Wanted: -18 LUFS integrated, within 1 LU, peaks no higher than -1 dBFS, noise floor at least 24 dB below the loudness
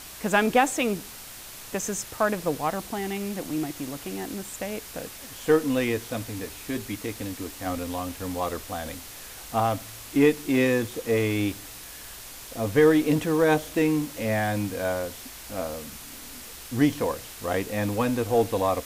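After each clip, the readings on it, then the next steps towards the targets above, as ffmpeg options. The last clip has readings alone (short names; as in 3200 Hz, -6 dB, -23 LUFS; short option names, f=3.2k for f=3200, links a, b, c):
noise floor -42 dBFS; noise floor target -51 dBFS; loudness -26.5 LUFS; peak -7.5 dBFS; loudness target -18.0 LUFS
-> -af "afftdn=nr=9:nf=-42"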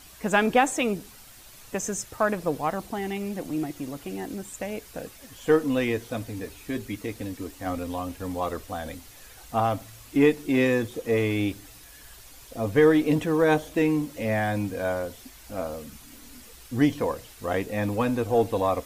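noise floor -49 dBFS; noise floor target -51 dBFS
-> -af "afftdn=nr=6:nf=-49"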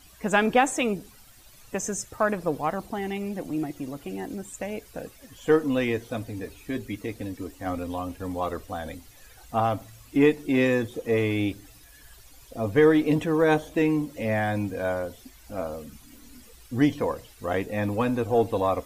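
noise floor -52 dBFS; loudness -26.5 LUFS; peak -7.5 dBFS; loudness target -18.0 LUFS
-> -af "volume=8.5dB,alimiter=limit=-1dB:level=0:latency=1"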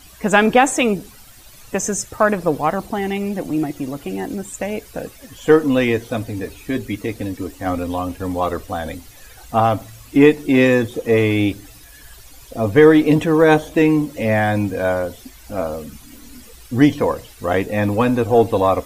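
loudness -18.0 LUFS; peak -1.0 dBFS; noise floor -44 dBFS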